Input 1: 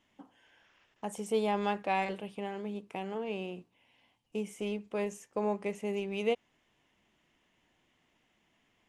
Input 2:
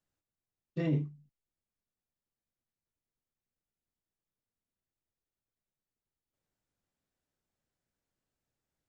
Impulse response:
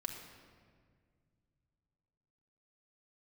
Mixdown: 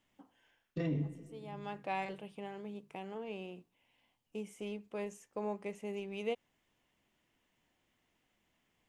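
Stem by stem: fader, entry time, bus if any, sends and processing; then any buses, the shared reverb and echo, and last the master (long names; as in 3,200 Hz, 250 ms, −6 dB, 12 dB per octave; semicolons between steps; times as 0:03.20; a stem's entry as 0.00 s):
−6.5 dB, 0.00 s, no send, automatic ducking −18 dB, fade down 0.25 s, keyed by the second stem
+0.5 dB, 0.00 s, send −4 dB, brickwall limiter −31 dBFS, peak gain reduction 10.5 dB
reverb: on, RT60 1.9 s, pre-delay 4 ms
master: no processing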